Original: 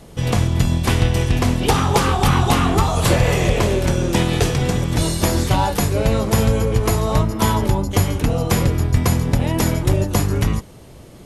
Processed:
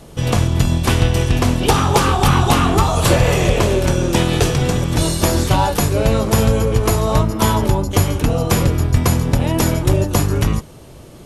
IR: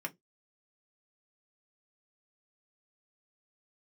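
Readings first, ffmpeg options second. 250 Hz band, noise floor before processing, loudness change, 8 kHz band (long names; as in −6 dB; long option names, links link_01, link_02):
+2.0 dB, −41 dBFS, +2.0 dB, +3.0 dB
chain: -filter_complex "[0:a]equalizer=frequency=2000:width=4.2:gain=-4,aeval=exprs='0.631*(cos(1*acos(clip(val(0)/0.631,-1,1)))-cos(1*PI/2))+0.00708*(cos(8*acos(clip(val(0)/0.631,-1,1)))-cos(8*PI/2))':channel_layout=same,asplit=2[link_01][link_02];[1:a]atrim=start_sample=2205[link_03];[link_02][link_03]afir=irnorm=-1:irlink=0,volume=-16dB[link_04];[link_01][link_04]amix=inputs=2:normalize=0,volume=2dB"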